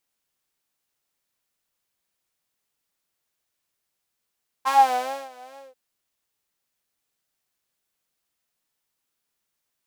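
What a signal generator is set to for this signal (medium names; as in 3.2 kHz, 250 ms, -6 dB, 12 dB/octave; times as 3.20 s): synth patch with vibrato C4, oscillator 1 saw, interval +19 st, oscillator 2 level -12 dB, sub -22 dB, filter highpass, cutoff 510 Hz, Q 11, filter envelope 1 oct, filter decay 0.28 s, filter sustain 35%, attack 27 ms, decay 0.61 s, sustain -23 dB, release 0.18 s, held 0.91 s, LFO 2.4 Hz, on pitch 85 cents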